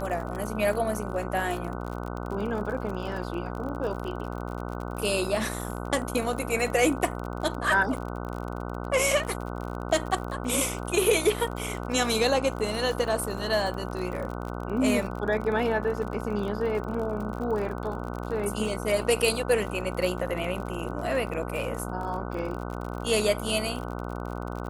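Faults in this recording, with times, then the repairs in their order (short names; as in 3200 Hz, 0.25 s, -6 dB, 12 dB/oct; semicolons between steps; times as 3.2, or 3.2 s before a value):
buzz 60 Hz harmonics 25 -34 dBFS
crackle 43/s -33 dBFS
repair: de-click; de-hum 60 Hz, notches 25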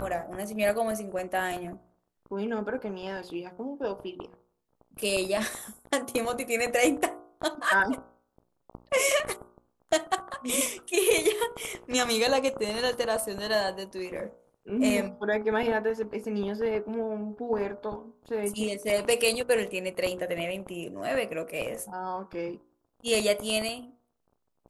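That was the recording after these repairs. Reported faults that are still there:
none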